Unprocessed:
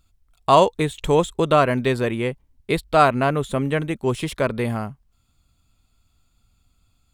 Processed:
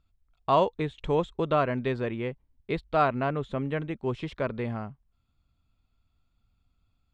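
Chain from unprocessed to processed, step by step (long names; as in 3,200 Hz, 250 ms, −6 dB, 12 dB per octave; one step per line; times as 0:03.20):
high-frequency loss of the air 190 metres
level −7.5 dB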